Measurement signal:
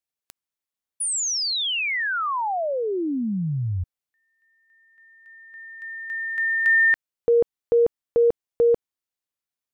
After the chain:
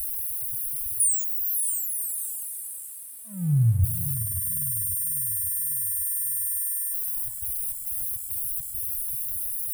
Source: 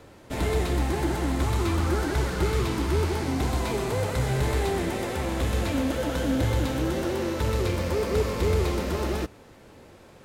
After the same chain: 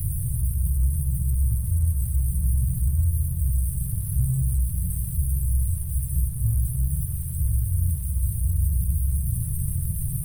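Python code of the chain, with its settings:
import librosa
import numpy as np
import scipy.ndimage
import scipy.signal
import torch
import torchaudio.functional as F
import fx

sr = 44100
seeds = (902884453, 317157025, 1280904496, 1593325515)

p1 = np.sign(x) * np.sqrt(np.mean(np.square(x)))
p2 = scipy.signal.sosfilt(scipy.signal.cheby2(5, 40, [230.0, 5800.0], 'bandstop', fs=sr, output='sos'), p1)
p3 = fx.hum_notches(p2, sr, base_hz=50, count=2)
p4 = fx.rider(p3, sr, range_db=3, speed_s=0.5)
p5 = p3 + (p4 * 10.0 ** (-1.0 / 20.0))
p6 = fx.spec_topn(p5, sr, count=64)
p7 = np.sign(p6) * np.maximum(np.abs(p6) - 10.0 ** (-53.5 / 20.0), 0.0)
p8 = fx.quant_dither(p7, sr, seeds[0], bits=12, dither='none')
p9 = fx.echo_feedback(p8, sr, ms=547, feedback_pct=48, wet_db=-12.5)
p10 = fx.rev_spring(p9, sr, rt60_s=2.7, pass_ms=(34, 51, 60), chirp_ms=80, drr_db=11.0)
y = p10 * 10.0 ** (2.5 / 20.0)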